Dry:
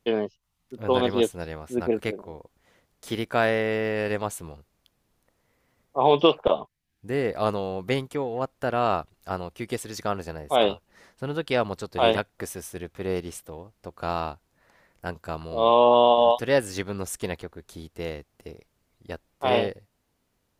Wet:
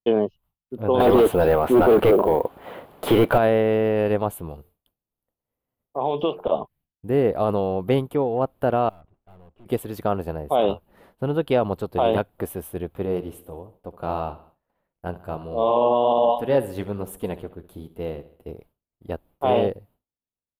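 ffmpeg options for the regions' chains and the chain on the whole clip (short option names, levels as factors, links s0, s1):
-filter_complex "[0:a]asettb=1/sr,asplit=3[s0][s1][s2];[s0]atrim=end=1.004[s3];[s1]atrim=start=1:end=3.38,asetpts=PTS-STARTPTS,afade=t=in:d=0.004:c=qsin,afade=t=out:st=2.376:d=0.004:c=qsin,asplit=2[s4][s5];[s5]highpass=f=720:p=1,volume=39.8,asoftclip=type=tanh:threshold=0.376[s6];[s4][s6]amix=inputs=2:normalize=0,lowpass=f=1700:p=1,volume=0.501,acrusher=bits=6:mode=log:mix=0:aa=0.000001[s7];[s2]atrim=start=3.376[s8];[s3][s7]acrossfade=d=0.004:c1=hsin:c2=qsin[s9];[s9][s8]acrossfade=d=0.004:c1=qsin:c2=hsin,asettb=1/sr,asplit=3[s10][s11][s12];[s10]atrim=end=4.494[s13];[s11]atrim=start=4.49:end=6.52,asetpts=PTS-STARTPTS,afade=t=in:d=0.004:c=qsin,afade=t=out:st=2.026:d=0.004:c=qsin,highshelf=f=4200:g=8,acompressor=threshold=0.0224:ratio=2:attack=3.2:release=140:knee=1:detection=peak,bandreject=f=89.1:t=h:w=4,bandreject=f=178.2:t=h:w=4,bandreject=f=267.3:t=h:w=4,bandreject=f=356.4:t=h:w=4,bandreject=f=445.5:t=h:w=4[s14];[s12]atrim=start=6.516[s15];[s13][s14]acrossfade=d=0.004:c1=hsin:c2=qsin[s16];[s16][s15]acrossfade=d=0.004:c1=qsin:c2=hsin,asettb=1/sr,asplit=3[s17][s18][s19];[s17]atrim=end=8.894[s20];[s18]atrim=start=8.89:end=9.66,asetpts=PTS-STARTPTS,afade=t=in:d=0.004:c=qsin,afade=t=out:st=0.766:d=0.004:c=qsin,lowpass=1900,acompressor=threshold=0.00631:ratio=2:attack=3.2:release=140:knee=1:detection=peak,aeval=exprs='(tanh(447*val(0)+0.6)-tanh(0.6))/447':c=same[s21];[s19]atrim=start=9.656[s22];[s20][s21]acrossfade=d=0.004:c1=hsin:c2=qsin[s23];[s23][s22]acrossfade=d=0.004:c1=qsin:c2=hsin,asettb=1/sr,asplit=3[s24][s25][s26];[s24]atrim=end=13.054[s27];[s25]atrim=start=13.05:end=18.48,asetpts=PTS-STARTPTS,afade=t=in:d=0.004:c=qsin,afade=t=out:st=5.426:d=0.004:c=qsin,aecho=1:1:67|134|201|268|335:0.158|0.0808|0.0412|0.021|0.0107,atrim=end_sample=239463,flanger=delay=3.9:depth=7.3:regen=-52:speed=1.2:shape=sinusoidal[s28];[s26]atrim=start=18.476[s29];[s27][s28]acrossfade=d=0.004:c1=hsin:c2=qsin[s30];[s30][s29]acrossfade=d=0.004:c1=qsin:c2=hsin,agate=range=0.0224:threshold=0.00224:ratio=3:detection=peak,firequalizer=gain_entry='entry(750,0);entry(1900,-12);entry(3000,-7);entry(5800,-24);entry(12000,-1)':delay=0.05:min_phase=1,alimiter=limit=0.158:level=0:latency=1:release=22,volume=2.11"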